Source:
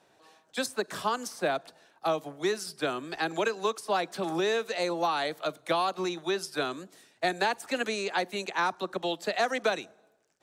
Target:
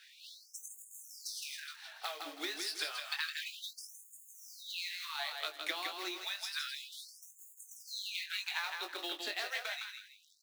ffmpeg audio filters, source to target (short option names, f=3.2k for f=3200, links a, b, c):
-filter_complex "[0:a]acrusher=bits=3:mode=log:mix=0:aa=0.000001,asettb=1/sr,asplit=3[a][b][c];[a]atrim=end=1.434[d];[b]atrim=start=1.43:end=3.67,asetpts=PTS-STARTPTS,afade=t=in:d=0.004:c=qsin,afade=t=out:st=2.236:d=0.004:c=qsin,aphaser=in_gain=1:out_gain=1:delay=3.8:decay=0.44:speed=1.7:type=triangular[e];[c]atrim=start=3.666[f];[d][e]acrossfade=d=0.004:c1=hsin:c2=qsin[g];[g][f]acrossfade=d=0.004:c1=qsin:c2=hsin,aeval=exprs='0.119*(abs(mod(val(0)/0.119+3,4)-2)-1)':c=same,asplit=2[h][i];[i]adelay=20,volume=-5.5dB[j];[h][j]amix=inputs=2:normalize=0,acompressor=threshold=-42dB:ratio=12,equalizer=f=250:t=o:w=1:g=-3,equalizer=f=500:t=o:w=1:g=-10,equalizer=f=1k:t=o:w=1:g=-5,equalizer=f=2k:t=o:w=1:g=4,equalizer=f=4k:t=o:w=1:g=6,equalizer=f=8k:t=o:w=1:g=-4,aecho=1:1:162|324|486|648:0.562|0.157|0.0441|0.0123,afftfilt=real='re*gte(b*sr/1024,240*pow(6600/240,0.5+0.5*sin(2*PI*0.3*pts/sr)))':imag='im*gte(b*sr/1024,240*pow(6600/240,0.5+0.5*sin(2*PI*0.3*pts/sr)))':win_size=1024:overlap=0.75,volume=7dB"